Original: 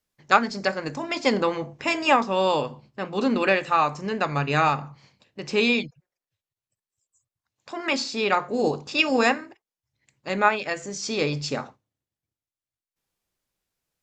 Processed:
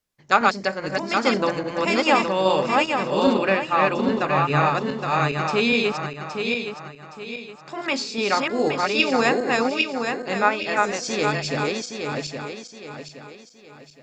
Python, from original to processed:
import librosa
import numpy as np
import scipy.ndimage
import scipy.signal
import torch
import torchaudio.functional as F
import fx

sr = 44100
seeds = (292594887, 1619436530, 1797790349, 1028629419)

y = fx.reverse_delay_fb(x, sr, ms=409, feedback_pct=60, wet_db=-1.5)
y = fx.high_shelf(y, sr, hz=4200.0, db=-7.0, at=(3.34, 4.75))